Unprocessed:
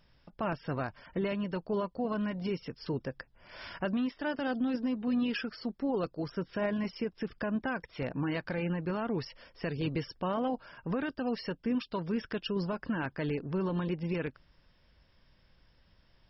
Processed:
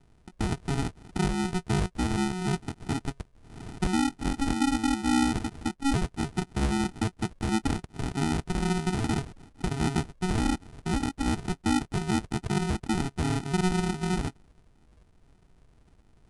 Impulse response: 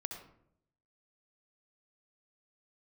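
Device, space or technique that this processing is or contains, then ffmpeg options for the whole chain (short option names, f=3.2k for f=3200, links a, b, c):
crushed at another speed: -af "asetrate=88200,aresample=44100,acrusher=samples=40:mix=1:aa=0.000001,asetrate=22050,aresample=44100,volume=5.5dB"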